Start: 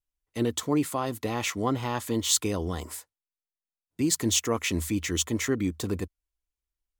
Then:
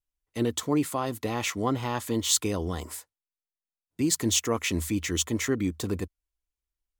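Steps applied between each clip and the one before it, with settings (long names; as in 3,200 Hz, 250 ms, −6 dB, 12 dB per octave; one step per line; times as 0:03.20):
no processing that can be heard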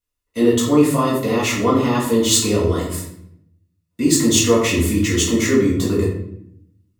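notch comb filter 790 Hz
rectangular room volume 160 cubic metres, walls mixed, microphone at 1.8 metres
level +4 dB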